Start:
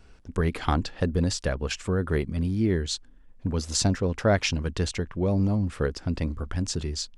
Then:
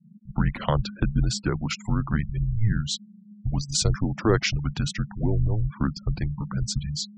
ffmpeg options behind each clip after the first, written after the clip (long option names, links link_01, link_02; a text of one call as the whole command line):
ffmpeg -i in.wav -af "afreqshift=-220,afftfilt=real='re*gte(hypot(re,im),0.0158)':imag='im*gte(hypot(re,im),0.0158)':win_size=1024:overlap=0.75,volume=1.5dB" out.wav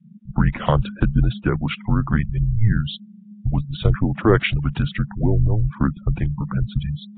ffmpeg -i in.wav -af "volume=5.5dB" -ar 8000 -c:a nellymoser out.flv